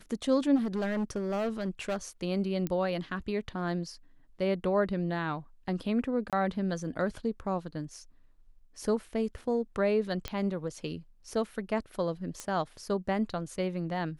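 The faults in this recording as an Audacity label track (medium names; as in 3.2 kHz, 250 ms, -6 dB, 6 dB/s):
0.550000	1.970000	clipped -27 dBFS
2.670000	2.670000	pop -19 dBFS
6.300000	6.330000	dropout 27 ms
10.280000	10.280000	pop -18 dBFS
12.400000	12.400000	pop -22 dBFS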